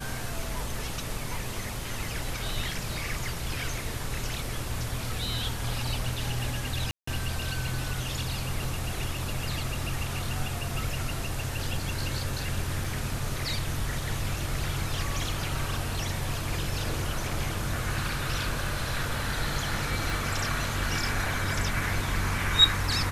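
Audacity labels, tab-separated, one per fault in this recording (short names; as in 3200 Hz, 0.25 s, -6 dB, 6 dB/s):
6.910000	7.070000	gap 0.164 s
12.840000	12.840000	gap 3.8 ms
20.100000	20.100000	pop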